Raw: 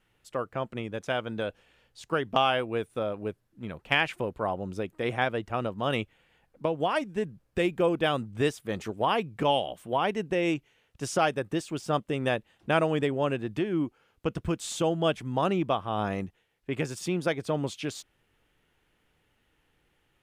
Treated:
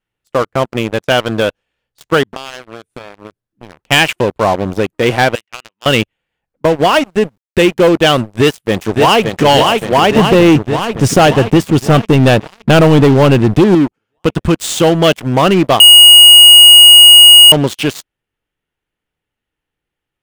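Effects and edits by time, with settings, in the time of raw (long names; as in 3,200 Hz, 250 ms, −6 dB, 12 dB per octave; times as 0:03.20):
0:02.23–0:03.89: downward compressor 5 to 1, threshold −40 dBFS
0:05.35–0:05.86: resonant band-pass 2,600 Hz, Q 2.9
0:07.10–0:07.74: centre clipping without the shift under −49.5 dBFS
0:08.30–0:09.42: delay throw 570 ms, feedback 65%, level −4.5 dB
0:10.16–0:13.75: low-shelf EQ 320 Hz +11.5 dB
0:15.80–0:17.52: beep over 2,880 Hz −7 dBFS
whole clip: dynamic equaliser 2,900 Hz, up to +6 dB, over −50 dBFS, Q 5.1; leveller curve on the samples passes 5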